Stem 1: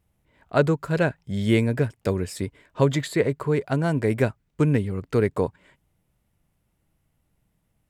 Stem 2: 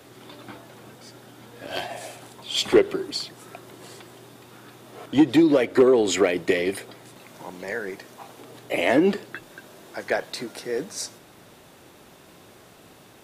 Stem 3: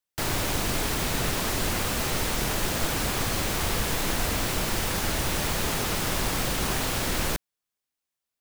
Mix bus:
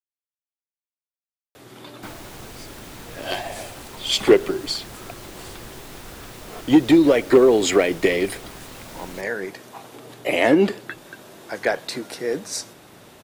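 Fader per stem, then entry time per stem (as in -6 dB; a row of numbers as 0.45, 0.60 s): off, +3.0 dB, -14.0 dB; off, 1.55 s, 1.85 s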